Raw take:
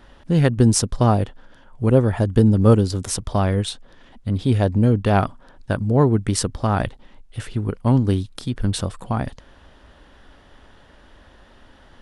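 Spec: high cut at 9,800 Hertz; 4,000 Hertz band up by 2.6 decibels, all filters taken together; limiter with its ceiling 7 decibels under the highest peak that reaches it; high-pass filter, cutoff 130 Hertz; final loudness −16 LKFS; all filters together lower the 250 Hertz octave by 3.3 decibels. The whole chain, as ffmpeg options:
ffmpeg -i in.wav -af "highpass=130,lowpass=9800,equalizer=frequency=250:width_type=o:gain=-3.5,equalizer=frequency=4000:width_type=o:gain=3.5,volume=8dB,alimiter=limit=-1dB:level=0:latency=1" out.wav

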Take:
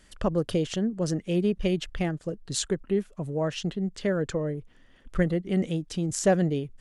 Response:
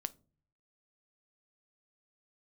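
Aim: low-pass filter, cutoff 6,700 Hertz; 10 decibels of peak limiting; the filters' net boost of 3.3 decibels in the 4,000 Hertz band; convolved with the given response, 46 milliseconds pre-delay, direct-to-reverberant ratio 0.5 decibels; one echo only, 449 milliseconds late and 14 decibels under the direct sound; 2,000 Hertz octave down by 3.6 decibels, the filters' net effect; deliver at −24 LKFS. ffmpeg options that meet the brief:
-filter_complex "[0:a]lowpass=6700,equalizer=frequency=2000:width_type=o:gain=-6.5,equalizer=frequency=4000:width_type=o:gain=7,alimiter=limit=-19dB:level=0:latency=1,aecho=1:1:449:0.2,asplit=2[link_01][link_02];[1:a]atrim=start_sample=2205,adelay=46[link_03];[link_02][link_03]afir=irnorm=-1:irlink=0,volume=1dB[link_04];[link_01][link_04]amix=inputs=2:normalize=0,volume=2.5dB"

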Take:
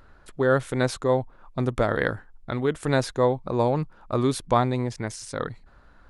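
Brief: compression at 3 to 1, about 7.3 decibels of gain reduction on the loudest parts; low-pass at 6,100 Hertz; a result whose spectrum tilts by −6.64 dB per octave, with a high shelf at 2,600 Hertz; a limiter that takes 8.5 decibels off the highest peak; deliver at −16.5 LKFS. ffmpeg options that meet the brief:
ffmpeg -i in.wav -af "lowpass=6100,highshelf=frequency=2600:gain=-7,acompressor=threshold=-26dB:ratio=3,volume=19.5dB,alimiter=limit=-4dB:level=0:latency=1" out.wav

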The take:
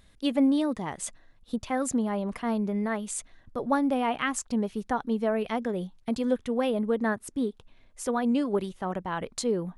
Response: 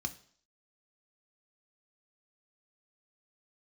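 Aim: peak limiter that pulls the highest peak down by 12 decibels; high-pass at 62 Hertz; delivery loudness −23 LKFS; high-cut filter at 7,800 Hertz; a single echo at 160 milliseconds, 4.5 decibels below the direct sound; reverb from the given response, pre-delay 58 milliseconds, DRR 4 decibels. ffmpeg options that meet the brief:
-filter_complex "[0:a]highpass=62,lowpass=7800,alimiter=level_in=1dB:limit=-24dB:level=0:latency=1,volume=-1dB,aecho=1:1:160:0.596,asplit=2[link_01][link_02];[1:a]atrim=start_sample=2205,adelay=58[link_03];[link_02][link_03]afir=irnorm=-1:irlink=0,volume=-5dB[link_04];[link_01][link_04]amix=inputs=2:normalize=0,volume=7.5dB"

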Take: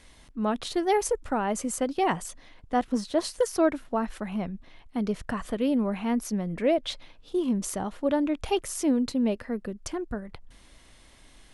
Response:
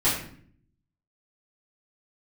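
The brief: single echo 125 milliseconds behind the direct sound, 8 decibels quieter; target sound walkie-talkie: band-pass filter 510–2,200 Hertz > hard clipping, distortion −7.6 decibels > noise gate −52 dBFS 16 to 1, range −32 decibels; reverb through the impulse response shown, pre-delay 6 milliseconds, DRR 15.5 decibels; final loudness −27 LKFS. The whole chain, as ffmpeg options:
-filter_complex "[0:a]aecho=1:1:125:0.398,asplit=2[link_01][link_02];[1:a]atrim=start_sample=2205,adelay=6[link_03];[link_02][link_03]afir=irnorm=-1:irlink=0,volume=-29.5dB[link_04];[link_01][link_04]amix=inputs=2:normalize=0,highpass=510,lowpass=2200,asoftclip=type=hard:threshold=-28.5dB,agate=range=-32dB:threshold=-52dB:ratio=16,volume=9dB"

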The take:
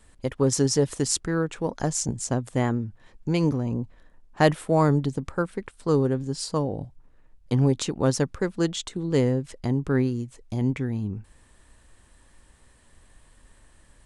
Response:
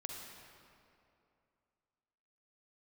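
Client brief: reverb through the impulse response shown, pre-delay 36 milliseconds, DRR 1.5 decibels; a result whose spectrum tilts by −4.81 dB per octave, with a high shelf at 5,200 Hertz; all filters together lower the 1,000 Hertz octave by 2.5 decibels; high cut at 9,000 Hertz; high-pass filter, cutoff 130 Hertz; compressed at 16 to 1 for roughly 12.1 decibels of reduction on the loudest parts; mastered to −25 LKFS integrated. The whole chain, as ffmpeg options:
-filter_complex "[0:a]highpass=130,lowpass=9000,equalizer=frequency=1000:width_type=o:gain=-3.5,highshelf=frequency=5200:gain=6,acompressor=threshold=-26dB:ratio=16,asplit=2[link_01][link_02];[1:a]atrim=start_sample=2205,adelay=36[link_03];[link_02][link_03]afir=irnorm=-1:irlink=0,volume=0dB[link_04];[link_01][link_04]amix=inputs=2:normalize=0,volume=5.5dB"

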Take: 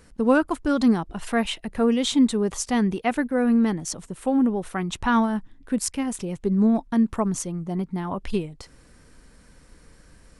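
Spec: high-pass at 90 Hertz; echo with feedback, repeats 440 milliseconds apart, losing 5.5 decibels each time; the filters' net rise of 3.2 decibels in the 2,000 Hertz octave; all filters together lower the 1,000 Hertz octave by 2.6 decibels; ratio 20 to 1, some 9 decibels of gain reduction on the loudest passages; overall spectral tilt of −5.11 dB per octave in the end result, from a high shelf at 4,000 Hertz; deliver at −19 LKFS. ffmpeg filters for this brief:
ffmpeg -i in.wav -af "highpass=90,equalizer=frequency=1000:width_type=o:gain=-5,equalizer=frequency=2000:width_type=o:gain=8,highshelf=frequency=4000:gain=-8,acompressor=threshold=-23dB:ratio=20,aecho=1:1:440|880|1320|1760|2200|2640|3080:0.531|0.281|0.149|0.079|0.0419|0.0222|0.0118,volume=9dB" out.wav

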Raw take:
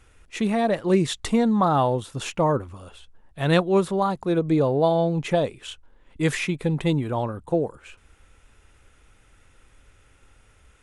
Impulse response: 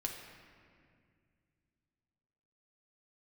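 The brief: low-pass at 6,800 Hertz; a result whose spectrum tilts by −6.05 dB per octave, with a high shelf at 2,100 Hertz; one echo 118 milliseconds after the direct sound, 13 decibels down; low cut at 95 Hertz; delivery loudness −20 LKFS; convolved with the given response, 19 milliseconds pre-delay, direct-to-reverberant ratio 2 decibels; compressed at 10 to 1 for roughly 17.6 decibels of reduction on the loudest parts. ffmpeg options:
-filter_complex "[0:a]highpass=95,lowpass=6800,highshelf=frequency=2100:gain=-8.5,acompressor=threshold=-34dB:ratio=10,aecho=1:1:118:0.224,asplit=2[link_01][link_02];[1:a]atrim=start_sample=2205,adelay=19[link_03];[link_02][link_03]afir=irnorm=-1:irlink=0,volume=-2.5dB[link_04];[link_01][link_04]amix=inputs=2:normalize=0,volume=16.5dB"

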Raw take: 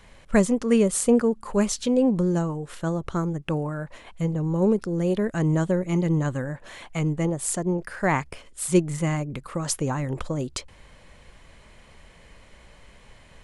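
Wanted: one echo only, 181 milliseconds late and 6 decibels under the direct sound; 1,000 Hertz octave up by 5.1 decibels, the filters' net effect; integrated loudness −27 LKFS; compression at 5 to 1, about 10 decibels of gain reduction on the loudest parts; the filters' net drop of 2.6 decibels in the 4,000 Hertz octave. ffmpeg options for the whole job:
ffmpeg -i in.wav -af "equalizer=frequency=1000:width_type=o:gain=6.5,equalizer=frequency=4000:width_type=o:gain=-4,acompressor=threshold=-24dB:ratio=5,aecho=1:1:181:0.501,volume=1.5dB" out.wav

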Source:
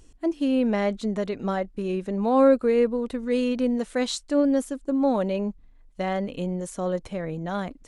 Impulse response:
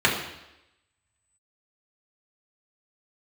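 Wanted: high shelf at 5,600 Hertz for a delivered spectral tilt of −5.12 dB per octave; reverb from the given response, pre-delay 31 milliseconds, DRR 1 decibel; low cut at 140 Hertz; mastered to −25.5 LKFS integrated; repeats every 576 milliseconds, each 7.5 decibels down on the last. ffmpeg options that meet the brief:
-filter_complex "[0:a]highpass=140,highshelf=frequency=5600:gain=8,aecho=1:1:576|1152|1728|2304|2880:0.422|0.177|0.0744|0.0312|0.0131,asplit=2[link_01][link_02];[1:a]atrim=start_sample=2205,adelay=31[link_03];[link_02][link_03]afir=irnorm=-1:irlink=0,volume=-19.5dB[link_04];[link_01][link_04]amix=inputs=2:normalize=0,volume=-3dB"

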